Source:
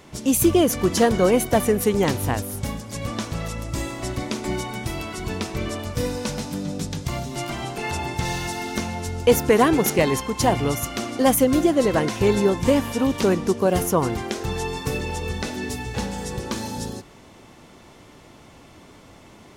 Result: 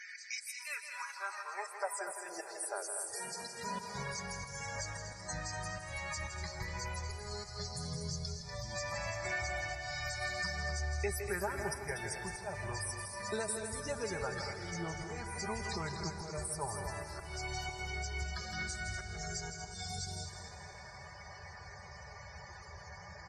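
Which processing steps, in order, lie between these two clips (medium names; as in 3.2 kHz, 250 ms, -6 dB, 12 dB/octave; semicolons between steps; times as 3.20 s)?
peaking EQ 3.5 kHz -11.5 dB 0.66 oct; high-pass sweep 2.3 kHz -> 100 Hz, 0.35–4.32 s; amplifier tone stack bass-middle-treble 10-0-10; compression 12:1, threshold -44 dBFS, peak gain reduction 24.5 dB; slow attack 149 ms; loudest bins only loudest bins 64; tape speed -16%; comb 5 ms, depth 49%; loudspeakers at several distances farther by 56 m -9 dB, 83 m -9 dB; on a send at -10.5 dB: reverberation RT60 3.4 s, pre-delay 144 ms; on the sum: trim +9 dB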